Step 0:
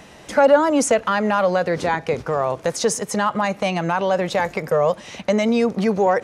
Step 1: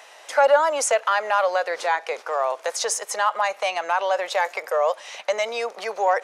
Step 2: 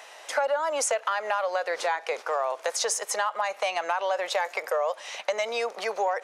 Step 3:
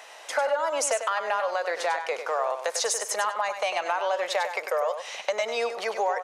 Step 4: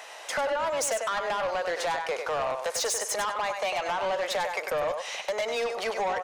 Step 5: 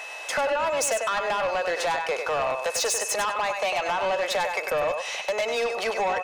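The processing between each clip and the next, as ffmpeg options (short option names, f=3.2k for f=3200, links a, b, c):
-af "highpass=f=580:w=0.5412,highpass=f=580:w=1.3066"
-af "acompressor=threshold=-23dB:ratio=6"
-af "aecho=1:1:98|196:0.376|0.0601"
-af "asoftclip=type=tanh:threshold=-26.5dB,volume=2.5dB"
-af "aeval=exprs='val(0)+0.01*sin(2*PI*2600*n/s)':c=same,volume=3dB"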